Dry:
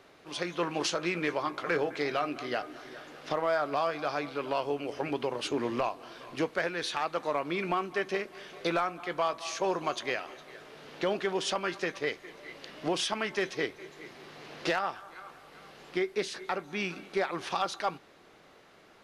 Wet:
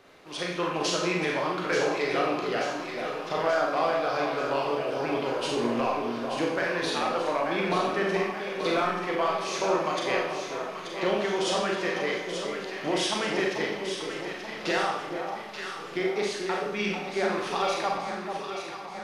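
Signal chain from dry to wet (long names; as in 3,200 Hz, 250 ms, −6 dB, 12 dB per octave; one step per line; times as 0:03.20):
on a send: delay that swaps between a low-pass and a high-pass 441 ms, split 1,000 Hz, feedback 75%, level −5 dB
on the sum: four-comb reverb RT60 0.68 s, combs from 30 ms, DRR −1 dB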